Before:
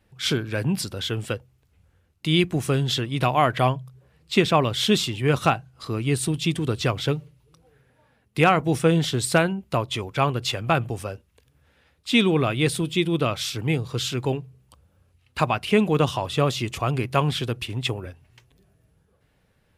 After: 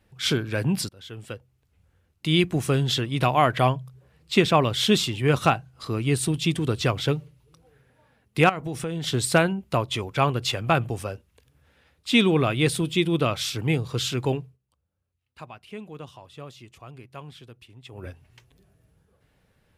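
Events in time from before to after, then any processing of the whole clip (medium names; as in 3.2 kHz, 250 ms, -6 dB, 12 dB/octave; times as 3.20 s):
0.89–2.85 s: fade in equal-power, from -22.5 dB
8.49–9.07 s: compression 4:1, threshold -28 dBFS
14.41–18.08 s: dip -19.5 dB, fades 0.17 s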